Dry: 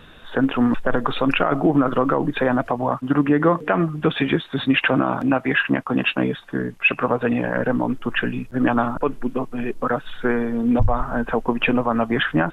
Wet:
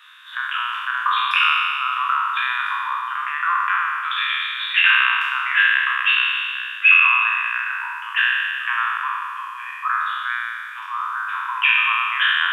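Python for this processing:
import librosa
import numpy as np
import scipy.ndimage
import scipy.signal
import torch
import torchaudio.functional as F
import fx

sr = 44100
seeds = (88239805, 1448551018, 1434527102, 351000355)

y = fx.spec_trails(x, sr, decay_s=2.22)
y = scipy.signal.sosfilt(scipy.signal.butter(16, 1000.0, 'highpass', fs=sr, output='sos'), y)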